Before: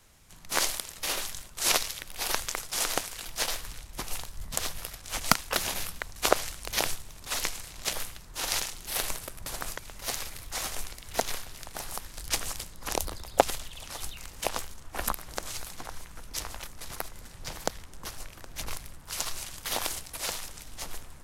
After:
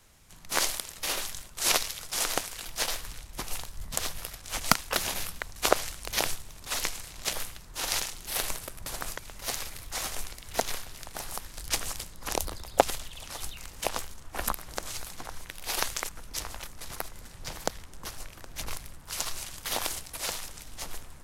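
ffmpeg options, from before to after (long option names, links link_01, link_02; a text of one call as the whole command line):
ffmpeg -i in.wav -filter_complex "[0:a]asplit=4[link_01][link_02][link_03][link_04];[link_01]atrim=end=2.012[link_05];[link_02]atrim=start=2.608:end=16.092[link_06];[link_03]atrim=start=2.008:end=2.612[link_07];[link_04]atrim=start=16.088[link_08];[link_05][link_06]acrossfade=duration=0.004:curve1=hsin:curve2=hsin[link_09];[link_09][link_07]acrossfade=duration=0.004:curve1=hsin:curve2=hsin[link_10];[link_10][link_08]acrossfade=duration=0.004:curve1=hsin:curve2=hsin" out.wav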